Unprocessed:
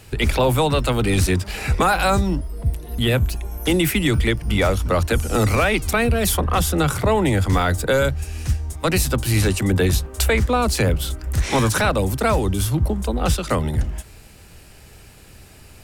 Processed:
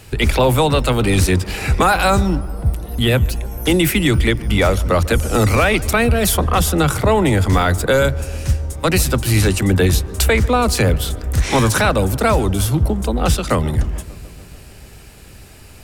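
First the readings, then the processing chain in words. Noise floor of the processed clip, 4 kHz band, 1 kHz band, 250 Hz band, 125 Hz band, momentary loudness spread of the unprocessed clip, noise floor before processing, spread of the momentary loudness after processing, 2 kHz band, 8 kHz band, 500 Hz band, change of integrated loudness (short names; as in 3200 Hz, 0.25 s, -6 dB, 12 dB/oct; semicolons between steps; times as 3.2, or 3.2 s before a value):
-40 dBFS, +3.5 dB, +3.5 dB, +3.5 dB, +3.5 dB, 6 LU, -45 dBFS, 6 LU, +3.5 dB, +3.5 dB, +3.5 dB, +3.5 dB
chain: darkening echo 0.147 s, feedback 79%, low-pass 1900 Hz, level -20 dB; gain +3.5 dB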